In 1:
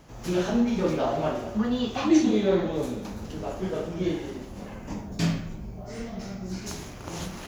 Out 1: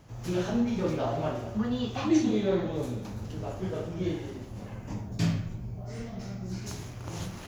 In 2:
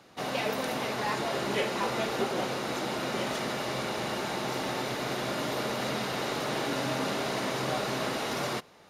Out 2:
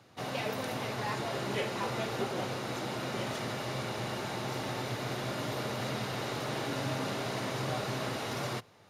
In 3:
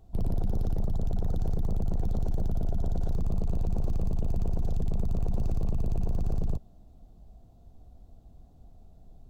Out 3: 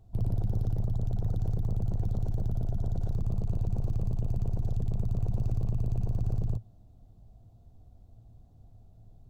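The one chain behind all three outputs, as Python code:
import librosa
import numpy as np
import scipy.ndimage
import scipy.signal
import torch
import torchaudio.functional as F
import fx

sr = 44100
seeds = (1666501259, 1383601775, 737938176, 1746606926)

y = fx.peak_eq(x, sr, hz=110.0, db=14.5, octaves=0.45)
y = F.gain(torch.from_numpy(y), -4.5).numpy()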